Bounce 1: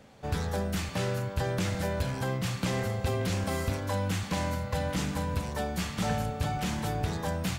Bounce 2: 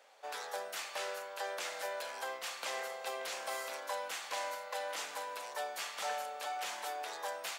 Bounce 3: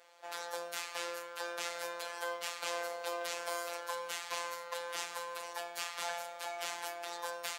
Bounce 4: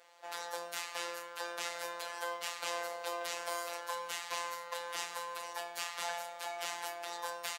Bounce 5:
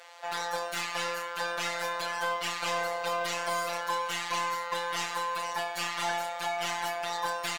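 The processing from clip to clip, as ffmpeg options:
ffmpeg -i in.wav -af "highpass=frequency=560:width=0.5412,highpass=frequency=560:width=1.3066,volume=-3.5dB" out.wav
ffmpeg -i in.wav -af "afftfilt=real='hypot(re,im)*cos(PI*b)':imag='0':win_size=1024:overlap=0.75,volume=4.5dB" out.wav
ffmpeg -i in.wav -filter_complex "[0:a]asplit=2[link_01][link_02];[link_02]adelay=28,volume=-12.5dB[link_03];[link_01][link_03]amix=inputs=2:normalize=0" out.wav
ffmpeg -i in.wav -filter_complex "[0:a]asplit=2[link_01][link_02];[link_02]highpass=frequency=720:poles=1,volume=20dB,asoftclip=type=tanh:threshold=-16.5dB[link_03];[link_01][link_03]amix=inputs=2:normalize=0,lowpass=frequency=6300:poles=1,volume=-6dB,volume=-1dB" out.wav

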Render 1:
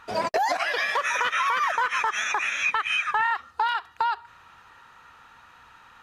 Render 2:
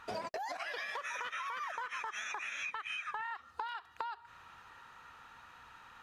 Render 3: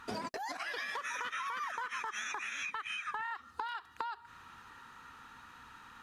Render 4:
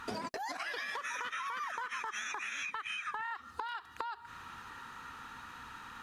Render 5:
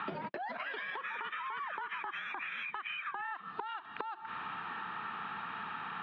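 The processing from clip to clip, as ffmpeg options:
ffmpeg -i in.wav -af "acompressor=threshold=-33dB:ratio=12,volume=-4dB" out.wav
ffmpeg -i in.wav -af "equalizer=frequency=250:width_type=o:width=0.67:gain=7,equalizer=frequency=630:width_type=o:width=0.67:gain=-8,equalizer=frequency=2500:width_type=o:width=0.67:gain=-3,equalizer=frequency=10000:width_type=o:width=0.67:gain=3,volume=3dB" out.wav
ffmpeg -i in.wav -af "acompressor=threshold=-44dB:ratio=2.5,volume=5.5dB" out.wav
ffmpeg -i in.wav -af "acompressor=threshold=-46dB:ratio=10,highpass=frequency=190:width_type=q:width=0.5412,highpass=frequency=190:width_type=q:width=1.307,lowpass=frequency=3400:width_type=q:width=0.5176,lowpass=frequency=3400:width_type=q:width=0.7071,lowpass=frequency=3400:width_type=q:width=1.932,afreqshift=-51,volume=9.5dB" out.wav

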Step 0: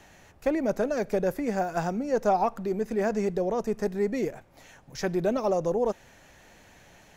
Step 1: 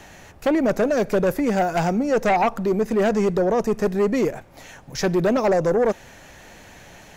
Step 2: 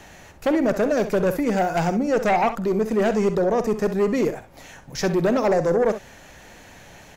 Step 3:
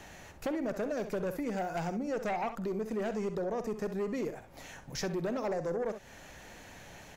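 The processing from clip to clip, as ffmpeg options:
ffmpeg -i in.wav -af "aeval=exprs='0.251*sin(PI/2*2.51*val(0)/0.251)':channel_layout=same,volume=-2.5dB" out.wav
ffmpeg -i in.wav -af "aecho=1:1:47|65:0.158|0.251,volume=-1dB" out.wav
ffmpeg -i in.wav -af "acompressor=threshold=-31dB:ratio=2.5,volume=-5dB" out.wav

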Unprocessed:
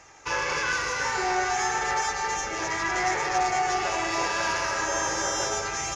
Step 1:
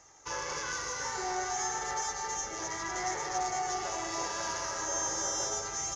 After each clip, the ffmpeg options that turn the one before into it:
ffmpeg -i in.wav -af "equalizer=frequency=1600:width_type=o:width=0.33:gain=-4,equalizer=frequency=2500:width_type=o:width=0.33:gain=-10,equalizer=frequency=6300:width_type=o:width=0.33:gain=8,volume=-8dB" out.wav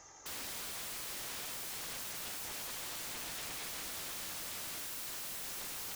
ffmpeg -i in.wav -af "acompressor=threshold=-35dB:ratio=12,aeval=exprs='(mod(100*val(0)+1,2)-1)/100':channel_layout=same,volume=2dB" out.wav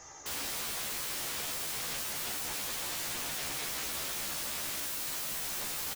ffmpeg -i in.wav -filter_complex "[0:a]asplit=2[link_01][link_02];[link_02]adelay=14,volume=-2dB[link_03];[link_01][link_03]amix=inputs=2:normalize=0,volume=4dB" out.wav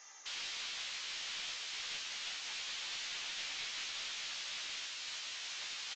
ffmpeg -i in.wav -af "bandpass=frequency=3200:width_type=q:width=1.2:csg=0,aresample=16000,aeval=exprs='clip(val(0),-1,0.0106)':channel_layout=same,aresample=44100,volume=1.5dB" out.wav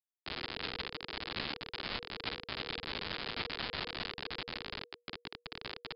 ffmpeg -i in.wav -af "aresample=11025,acrusher=bits=5:mix=0:aa=0.000001,aresample=44100,afreqshift=-480,volume=7.5dB" out.wav

